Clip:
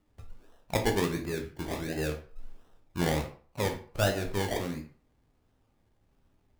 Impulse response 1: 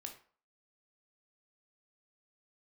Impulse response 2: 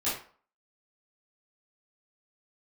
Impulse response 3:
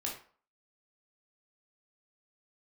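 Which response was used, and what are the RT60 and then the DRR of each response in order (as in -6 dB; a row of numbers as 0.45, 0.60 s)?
1; 0.45, 0.45, 0.45 s; 3.5, -11.5, -2.5 dB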